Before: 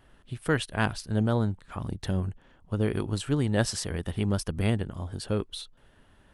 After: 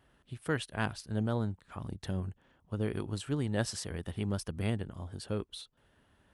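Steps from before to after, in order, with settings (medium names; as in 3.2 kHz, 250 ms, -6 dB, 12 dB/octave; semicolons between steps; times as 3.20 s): high-pass 50 Hz; trim -6.5 dB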